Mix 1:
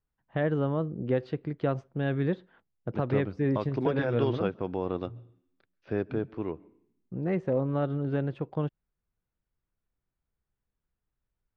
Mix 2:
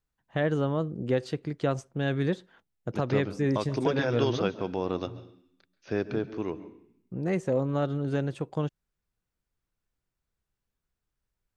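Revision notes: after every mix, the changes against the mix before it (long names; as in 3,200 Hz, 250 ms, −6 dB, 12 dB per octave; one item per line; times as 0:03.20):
second voice: send +11.0 dB
master: remove high-frequency loss of the air 330 metres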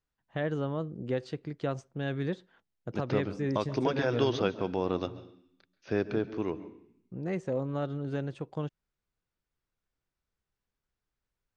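first voice −5.0 dB
master: add low-pass filter 6,500 Hz 12 dB per octave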